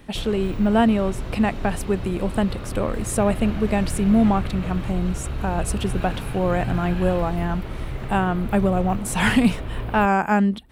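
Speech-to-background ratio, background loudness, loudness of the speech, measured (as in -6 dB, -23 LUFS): 8.5 dB, -31.0 LUFS, -22.5 LUFS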